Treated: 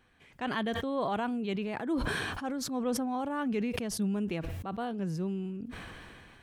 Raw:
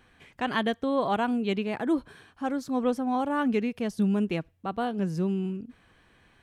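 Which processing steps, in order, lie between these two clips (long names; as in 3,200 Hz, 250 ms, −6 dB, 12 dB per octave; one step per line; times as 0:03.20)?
level that may fall only so fast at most 22 dB per second
level −6.5 dB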